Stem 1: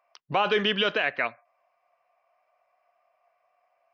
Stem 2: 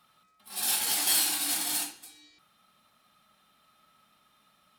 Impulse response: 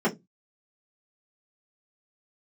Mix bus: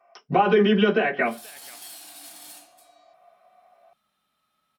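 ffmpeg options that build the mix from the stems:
-filter_complex "[0:a]volume=0.5dB,asplit=3[a][b][c];[b]volume=-4dB[d];[c]volume=-23dB[e];[1:a]acompressor=threshold=-34dB:ratio=2.5,adelay=750,volume=-9dB[f];[2:a]atrim=start_sample=2205[g];[d][g]afir=irnorm=-1:irlink=0[h];[e]aecho=0:1:486:1[i];[a][f][h][i]amix=inputs=4:normalize=0,acompressor=threshold=-29dB:ratio=1.5"

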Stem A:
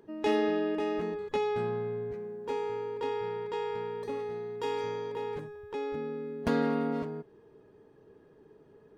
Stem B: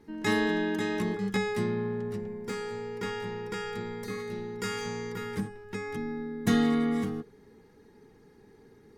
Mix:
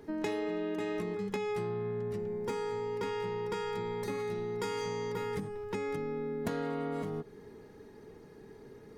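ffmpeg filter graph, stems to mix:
-filter_complex "[0:a]volume=2dB[a];[1:a]acompressor=threshold=-31dB:ratio=6,volume=2dB[b];[a][b]amix=inputs=2:normalize=0,acompressor=threshold=-33dB:ratio=4"

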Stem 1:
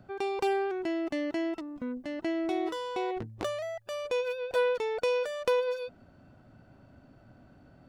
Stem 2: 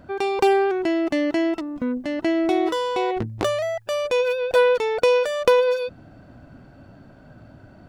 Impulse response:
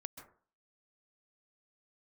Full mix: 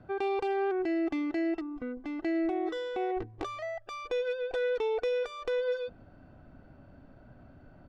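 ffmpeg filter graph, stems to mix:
-filter_complex "[0:a]lowpass=f=4k:p=1,volume=-1dB,asplit=2[a][b];[b]volume=-17dB[c];[1:a]asubboost=boost=4.5:cutoff=57,adelay=2.6,volume=-11.5dB[d];[2:a]atrim=start_sample=2205[e];[c][e]afir=irnorm=-1:irlink=0[f];[a][d][f]amix=inputs=3:normalize=0,adynamicsmooth=sensitivity=2:basefreq=4.7k,alimiter=limit=-24dB:level=0:latency=1:release=106"

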